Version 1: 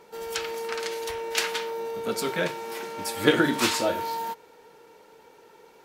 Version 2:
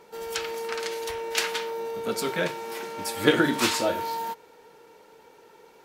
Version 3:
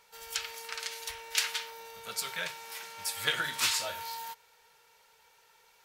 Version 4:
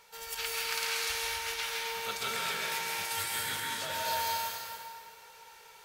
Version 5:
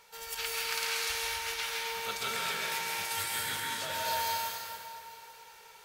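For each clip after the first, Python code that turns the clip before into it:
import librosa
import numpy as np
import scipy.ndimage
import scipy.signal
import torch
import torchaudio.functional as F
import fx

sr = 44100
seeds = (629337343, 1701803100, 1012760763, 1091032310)

y1 = x
y2 = fx.tone_stack(y1, sr, knobs='10-0-10')
y3 = fx.over_compress(y2, sr, threshold_db=-38.0, ratio=-0.5)
y3 = y3 + 10.0 ** (-8.5 / 20.0) * np.pad(y3, (int(268 * sr / 1000.0), 0))[:len(y3)]
y3 = fx.rev_plate(y3, sr, seeds[0], rt60_s=1.8, hf_ratio=0.8, predelay_ms=120, drr_db=-3.5)
y4 = y3 + 10.0 ** (-21.5 / 20.0) * np.pad(y3, (int(840 * sr / 1000.0), 0))[:len(y3)]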